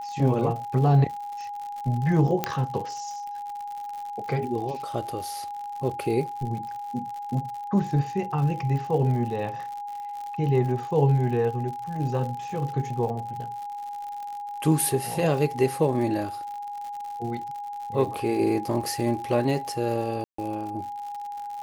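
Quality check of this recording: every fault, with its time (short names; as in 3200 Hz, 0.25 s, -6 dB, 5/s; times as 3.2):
crackle 93/s -34 dBFS
tone 820 Hz -32 dBFS
2.44 pop -9 dBFS
20.24–20.38 gap 0.144 s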